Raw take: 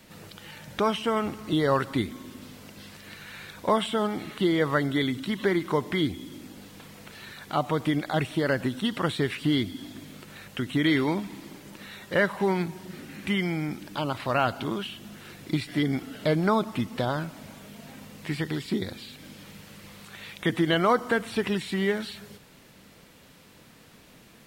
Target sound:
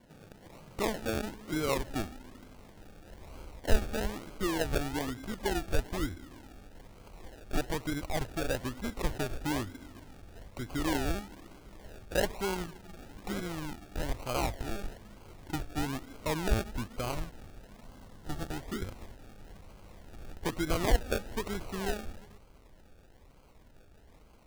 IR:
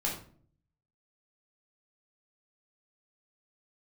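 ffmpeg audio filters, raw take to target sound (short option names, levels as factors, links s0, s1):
-filter_complex "[0:a]acrusher=samples=34:mix=1:aa=0.000001:lfo=1:lforange=20.4:lforate=1.1,asubboost=boost=7.5:cutoff=58,asettb=1/sr,asplit=3[s0][s1][s2];[s0]atrim=end=17.844[s3];[s1]atrim=start=17.84:end=18.51,asetpts=PTS-STARTPTS,afade=t=in:d=0.004:c=qsin,afade=t=out:st=0.666:d=0.004:c=qsin,bandreject=f=2400:w=5[s4];[s2]atrim=start=18.506[s5];[s3][s4]acrossfade=d=0.004:c1=hsin:c2=qsin[s6];[s6][s5]acrossfade=d=0.004:c1=qsin:c2=hsin,volume=0.447"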